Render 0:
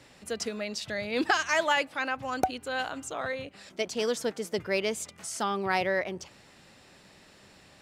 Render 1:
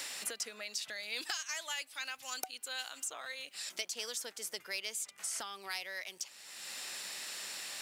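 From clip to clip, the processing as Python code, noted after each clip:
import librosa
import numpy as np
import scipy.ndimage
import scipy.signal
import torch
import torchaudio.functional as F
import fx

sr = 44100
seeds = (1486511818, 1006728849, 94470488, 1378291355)

y = np.diff(x, prepend=0.0)
y = fx.band_squash(y, sr, depth_pct=100)
y = F.gain(torch.from_numpy(y), 1.0).numpy()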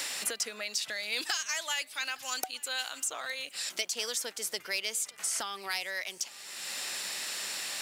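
y = x + 10.0 ** (-23.5 / 20.0) * np.pad(x, (int(863 * sr / 1000.0), 0))[:len(x)]
y = 10.0 ** (-22.0 / 20.0) * np.tanh(y / 10.0 ** (-22.0 / 20.0))
y = F.gain(torch.from_numpy(y), 6.5).numpy()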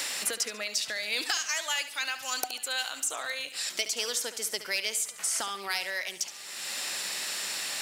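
y = fx.echo_feedback(x, sr, ms=71, feedback_pct=38, wet_db=-12.5)
y = F.gain(torch.from_numpy(y), 2.5).numpy()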